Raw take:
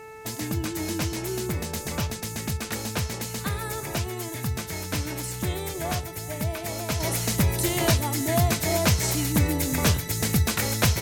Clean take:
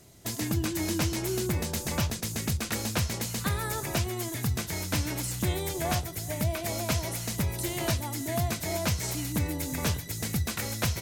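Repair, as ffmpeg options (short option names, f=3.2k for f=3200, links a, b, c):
-af "bandreject=f=438.4:t=h:w=4,bandreject=f=876.8:t=h:w=4,bandreject=f=1.3152k:t=h:w=4,bandreject=f=1.7536k:t=h:w=4,bandreject=f=2.192k:t=h:w=4,bandreject=f=2.6304k:t=h:w=4,asetnsamples=n=441:p=0,asendcmd='7 volume volume -7dB',volume=0dB"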